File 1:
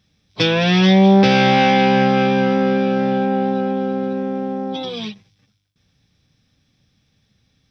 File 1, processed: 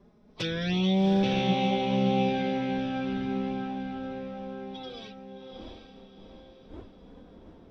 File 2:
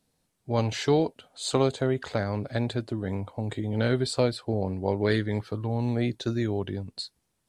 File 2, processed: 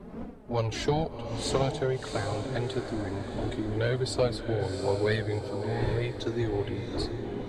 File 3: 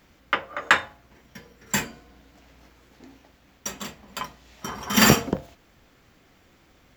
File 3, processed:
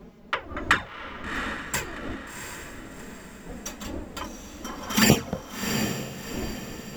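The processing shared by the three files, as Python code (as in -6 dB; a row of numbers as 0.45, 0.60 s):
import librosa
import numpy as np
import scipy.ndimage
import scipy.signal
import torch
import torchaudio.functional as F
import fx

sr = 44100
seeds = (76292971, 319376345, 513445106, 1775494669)

y = fx.dmg_wind(x, sr, seeds[0], corner_hz=340.0, level_db=-37.0)
y = fx.env_flanger(y, sr, rest_ms=5.3, full_db=-11.0)
y = fx.echo_diffused(y, sr, ms=722, feedback_pct=43, wet_db=-6.5)
y = y * 10.0 ** (-30 / 20.0) / np.sqrt(np.mean(np.square(y)))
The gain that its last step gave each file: -12.0, +0.5, -0.5 dB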